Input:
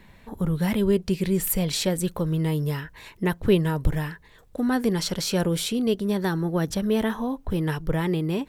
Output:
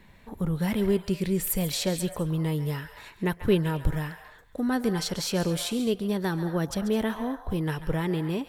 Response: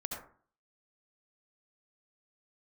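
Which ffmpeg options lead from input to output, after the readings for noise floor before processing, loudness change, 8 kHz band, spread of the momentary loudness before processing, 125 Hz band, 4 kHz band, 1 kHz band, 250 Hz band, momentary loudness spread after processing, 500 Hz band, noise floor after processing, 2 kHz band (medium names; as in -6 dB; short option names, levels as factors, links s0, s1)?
-52 dBFS, -3.0 dB, -2.5 dB, 8 LU, -3.0 dB, -2.5 dB, -2.5 dB, -3.0 dB, 8 LU, -3.0 dB, -53 dBFS, -2.5 dB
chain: -filter_complex "[0:a]asplit=2[s0][s1];[s1]highpass=f=630:w=0.5412,highpass=f=630:w=1.3066[s2];[1:a]atrim=start_sample=2205,adelay=138[s3];[s2][s3]afir=irnorm=-1:irlink=0,volume=0.335[s4];[s0][s4]amix=inputs=2:normalize=0,volume=0.708"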